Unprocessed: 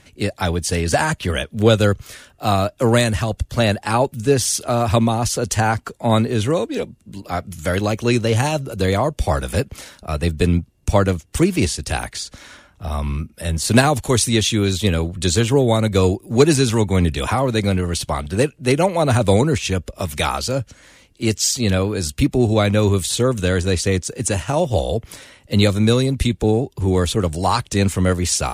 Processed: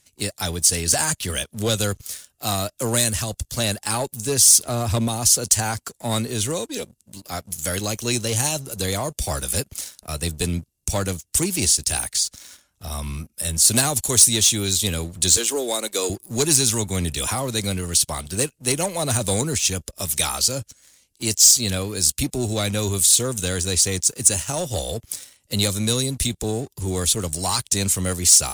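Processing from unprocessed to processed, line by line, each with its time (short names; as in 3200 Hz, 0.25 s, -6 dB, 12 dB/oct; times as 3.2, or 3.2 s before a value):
4.58–5.08 tilt -1.5 dB/oct
15.37–16.1 HPF 290 Hz 24 dB/oct
whole clip: high shelf 3400 Hz +8 dB; sample leveller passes 2; tone controls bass +1 dB, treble +12 dB; gain -15.5 dB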